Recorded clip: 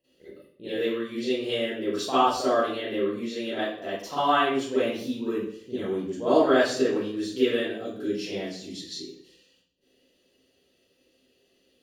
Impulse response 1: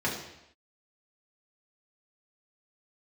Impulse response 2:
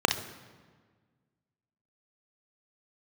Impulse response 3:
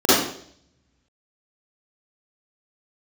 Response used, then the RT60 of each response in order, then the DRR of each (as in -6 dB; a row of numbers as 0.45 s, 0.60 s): 3; no single decay rate, 1.6 s, 0.60 s; -4.5 dB, 5.0 dB, -13.5 dB